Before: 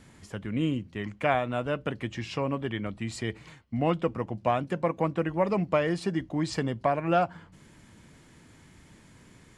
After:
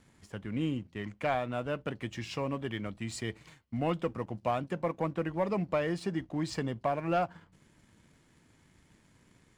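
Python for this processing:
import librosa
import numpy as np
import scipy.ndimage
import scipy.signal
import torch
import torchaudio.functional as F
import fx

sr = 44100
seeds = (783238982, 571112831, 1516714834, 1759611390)

y = fx.high_shelf(x, sr, hz=4900.0, db=6.0, at=(2.02, 4.59))
y = fx.leveller(y, sr, passes=1)
y = y * 10.0 ** (-8.0 / 20.0)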